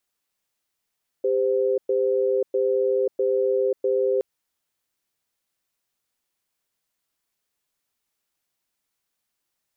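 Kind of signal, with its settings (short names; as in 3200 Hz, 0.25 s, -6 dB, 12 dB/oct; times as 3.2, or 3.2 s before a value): cadence 397 Hz, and 516 Hz, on 0.54 s, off 0.11 s, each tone -21.5 dBFS 2.97 s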